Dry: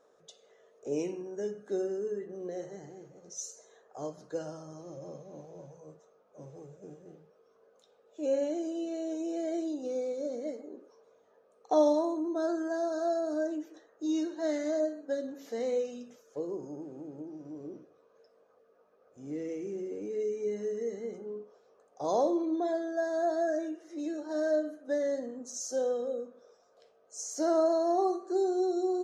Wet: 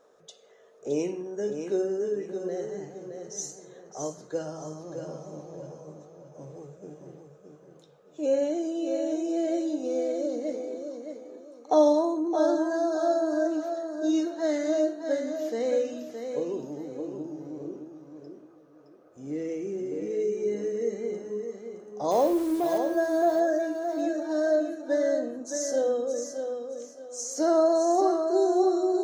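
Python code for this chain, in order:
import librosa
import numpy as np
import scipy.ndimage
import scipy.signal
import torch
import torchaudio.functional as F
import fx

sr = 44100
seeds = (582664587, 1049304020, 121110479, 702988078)

p1 = fx.delta_hold(x, sr, step_db=-43.0, at=(22.11, 22.78))
p2 = p1 + fx.echo_feedback(p1, sr, ms=617, feedback_pct=29, wet_db=-7, dry=0)
y = p2 * librosa.db_to_amplitude(4.5)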